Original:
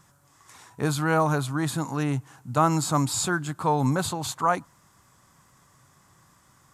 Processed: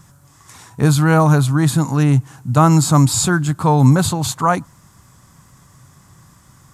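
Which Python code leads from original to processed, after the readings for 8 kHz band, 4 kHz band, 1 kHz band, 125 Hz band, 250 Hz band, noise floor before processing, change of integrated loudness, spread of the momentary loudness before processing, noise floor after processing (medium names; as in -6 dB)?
+9.5 dB, +8.0 dB, +6.5 dB, +14.5 dB, +11.5 dB, -60 dBFS, +10.5 dB, 7 LU, -50 dBFS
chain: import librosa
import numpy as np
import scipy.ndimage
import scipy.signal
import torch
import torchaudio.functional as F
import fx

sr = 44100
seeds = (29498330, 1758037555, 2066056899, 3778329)

y = fx.bass_treble(x, sr, bass_db=9, treble_db=3)
y = F.gain(torch.from_numpy(y), 6.5).numpy()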